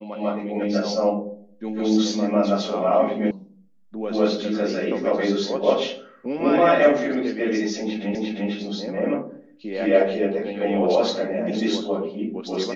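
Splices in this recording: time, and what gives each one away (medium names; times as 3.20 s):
3.31 s: sound stops dead
8.15 s: repeat of the last 0.35 s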